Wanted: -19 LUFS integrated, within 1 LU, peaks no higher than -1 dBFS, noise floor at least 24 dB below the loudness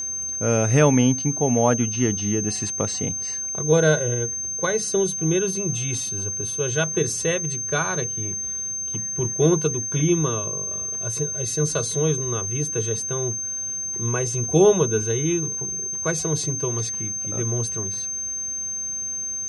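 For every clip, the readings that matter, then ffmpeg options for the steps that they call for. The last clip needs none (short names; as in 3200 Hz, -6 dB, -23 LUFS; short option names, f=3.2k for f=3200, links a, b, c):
steady tone 6300 Hz; tone level -26 dBFS; loudness -22.5 LUFS; peak -5.0 dBFS; loudness target -19.0 LUFS
-> -af "bandreject=f=6.3k:w=30"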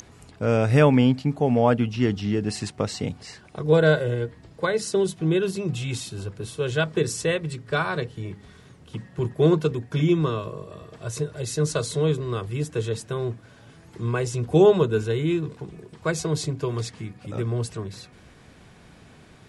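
steady tone none; loudness -24.0 LUFS; peak -5.0 dBFS; loudness target -19.0 LUFS
-> -af "volume=5dB,alimiter=limit=-1dB:level=0:latency=1"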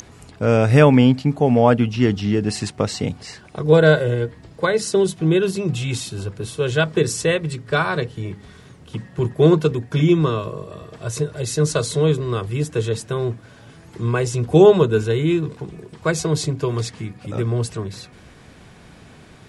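loudness -19.0 LUFS; peak -1.0 dBFS; noise floor -46 dBFS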